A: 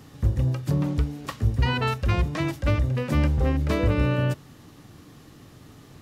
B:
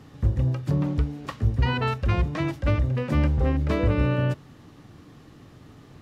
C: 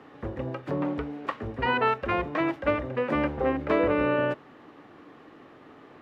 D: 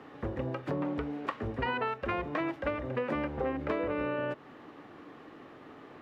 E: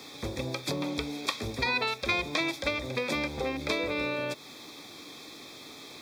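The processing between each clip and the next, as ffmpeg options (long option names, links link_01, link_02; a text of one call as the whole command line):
ffmpeg -i in.wav -af "lowpass=frequency=3300:poles=1" out.wav
ffmpeg -i in.wav -filter_complex "[0:a]acrossover=split=280 2800:gain=0.0708 1 0.1[link_01][link_02][link_03];[link_01][link_02][link_03]amix=inputs=3:normalize=0,volume=5dB" out.wav
ffmpeg -i in.wav -af "acompressor=threshold=-29dB:ratio=6" out.wav
ffmpeg -i in.wav -af "asuperstop=centerf=2900:order=8:qfactor=4.8,aexciter=amount=10.6:drive=8.4:freq=2600" out.wav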